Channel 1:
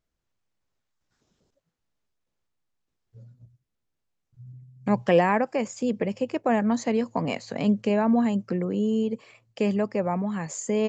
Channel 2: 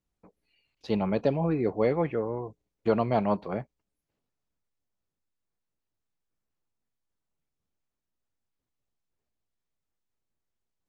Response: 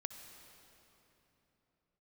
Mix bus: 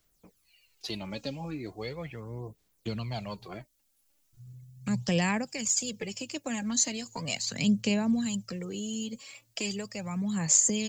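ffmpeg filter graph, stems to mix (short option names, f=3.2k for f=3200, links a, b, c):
-filter_complex "[0:a]volume=-2dB[a];[1:a]volume=-4dB[b];[a][b]amix=inputs=2:normalize=0,acrossover=split=180|3000[c][d][e];[d]acompressor=threshold=-45dB:ratio=3[f];[c][f][e]amix=inputs=3:normalize=0,crystalizer=i=6:c=0,aphaser=in_gain=1:out_gain=1:delay=3.7:decay=0.54:speed=0.38:type=sinusoidal"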